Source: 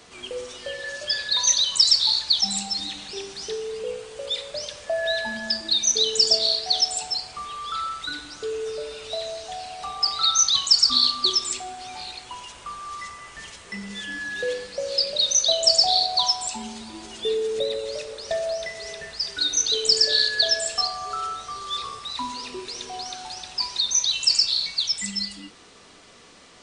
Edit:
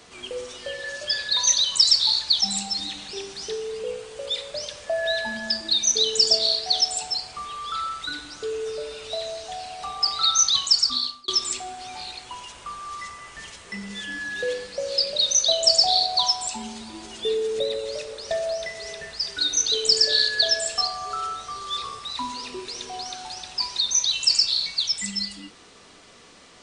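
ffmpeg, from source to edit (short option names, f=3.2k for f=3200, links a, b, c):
-filter_complex "[0:a]asplit=2[a][b];[a]atrim=end=11.28,asetpts=PTS-STARTPTS,afade=t=out:st=10.39:d=0.89:c=qsin[c];[b]atrim=start=11.28,asetpts=PTS-STARTPTS,afade=t=in:d=0.004:c=hsin[d];[c][d]concat=n=2:v=0:a=1"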